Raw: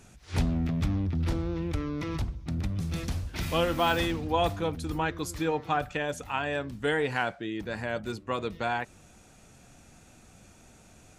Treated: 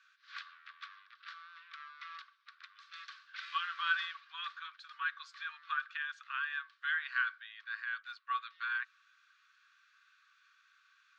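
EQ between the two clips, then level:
Chebyshev high-pass with heavy ripple 1,100 Hz, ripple 9 dB
Bessel low-pass filter 2,500 Hz, order 2
high-frequency loss of the air 110 metres
+4.5 dB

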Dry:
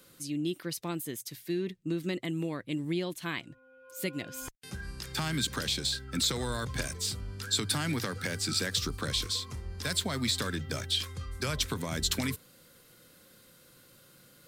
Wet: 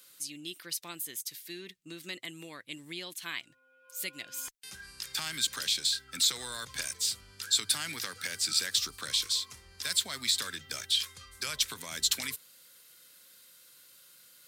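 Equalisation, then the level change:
tilt shelving filter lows −8.5 dB, about 1,200 Hz
low-shelf EQ 220 Hz −7 dB
−4.5 dB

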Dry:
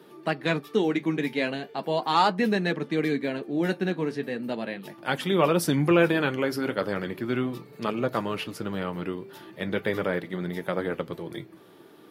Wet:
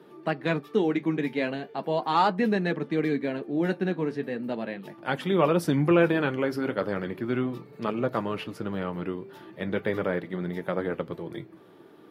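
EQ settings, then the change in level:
high-shelf EQ 3,200 Hz −10 dB
0.0 dB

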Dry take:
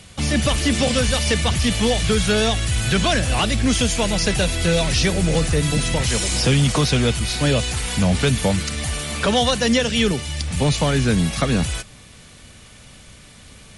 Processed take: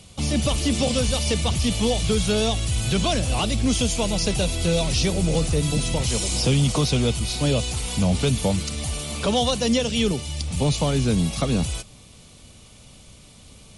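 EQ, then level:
parametric band 1,700 Hz −12 dB 0.68 octaves
−2.5 dB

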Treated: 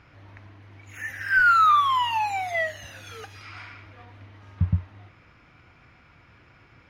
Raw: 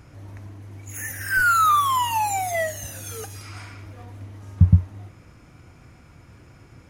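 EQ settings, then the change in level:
high-frequency loss of the air 320 metres
tilt shelving filter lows −9 dB
0.0 dB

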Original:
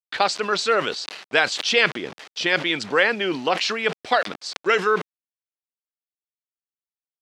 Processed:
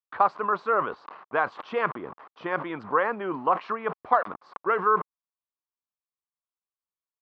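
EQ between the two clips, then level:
low-pass with resonance 1,100 Hz, resonance Q 4.9
low-shelf EQ 98 Hz +6.5 dB
−7.5 dB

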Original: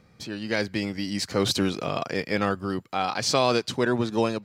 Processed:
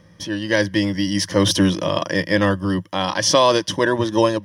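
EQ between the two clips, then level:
EQ curve with evenly spaced ripples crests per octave 1.2, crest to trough 13 dB
+5.5 dB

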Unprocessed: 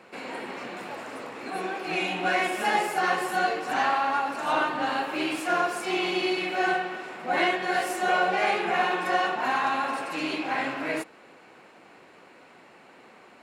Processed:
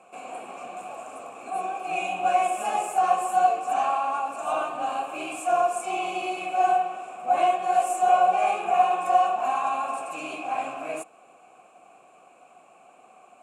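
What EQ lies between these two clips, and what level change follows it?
formant filter a
bass and treble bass +14 dB, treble +13 dB
high shelf with overshoot 6,100 Hz +9.5 dB, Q 3
+7.5 dB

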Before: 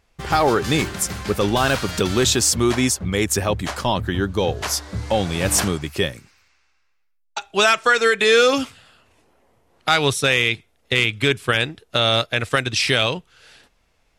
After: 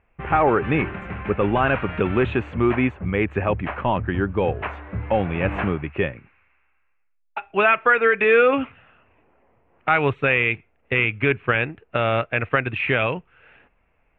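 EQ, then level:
elliptic low-pass filter 2,600 Hz, stop band 50 dB
0.0 dB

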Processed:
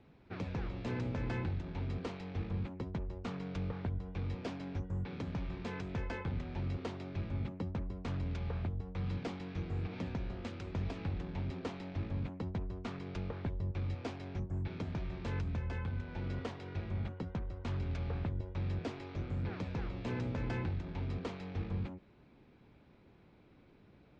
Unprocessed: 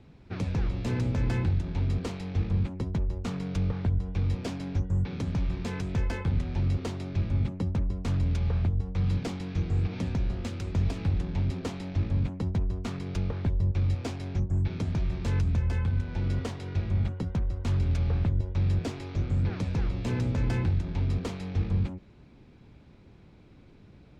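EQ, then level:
high-frequency loss of the air 67 metres
low-shelf EQ 200 Hz −10 dB
high-shelf EQ 5,900 Hz −10 dB
−3.0 dB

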